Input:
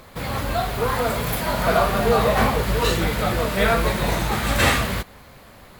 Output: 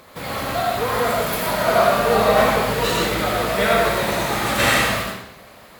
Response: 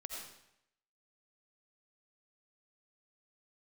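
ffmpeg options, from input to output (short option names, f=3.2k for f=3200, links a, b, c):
-filter_complex "[0:a]highpass=f=190:p=1[a];[1:a]atrim=start_sample=2205[b];[a][b]afir=irnorm=-1:irlink=0,volume=5dB"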